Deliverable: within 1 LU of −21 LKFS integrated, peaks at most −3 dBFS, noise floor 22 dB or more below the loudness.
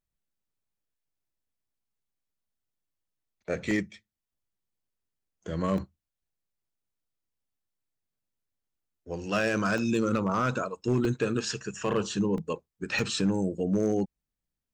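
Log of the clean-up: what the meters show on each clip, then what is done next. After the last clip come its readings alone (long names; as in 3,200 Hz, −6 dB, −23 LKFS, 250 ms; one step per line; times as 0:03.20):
share of clipped samples 0.3%; peaks flattened at −18.5 dBFS; number of dropouts 6; longest dropout 1.2 ms; integrated loudness −29.0 LKFS; sample peak −18.5 dBFS; target loudness −21.0 LKFS
→ clipped peaks rebuilt −18.5 dBFS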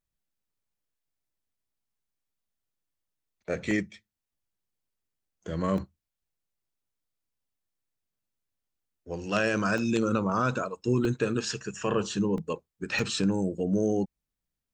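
share of clipped samples 0.0%; number of dropouts 6; longest dropout 1.2 ms
→ repair the gap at 0:03.71/0:05.78/0:09.78/0:11.05/0:12.38/0:12.99, 1.2 ms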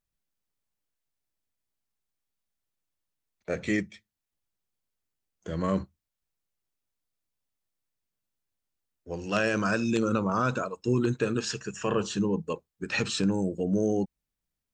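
number of dropouts 0; integrated loudness −29.0 LKFS; sample peak −10.0 dBFS; target loudness −21.0 LKFS
→ level +8 dB
brickwall limiter −3 dBFS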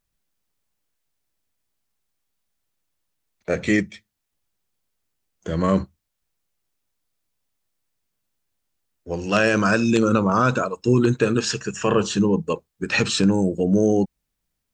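integrated loudness −21.0 LKFS; sample peak −3.0 dBFS; background noise floor −79 dBFS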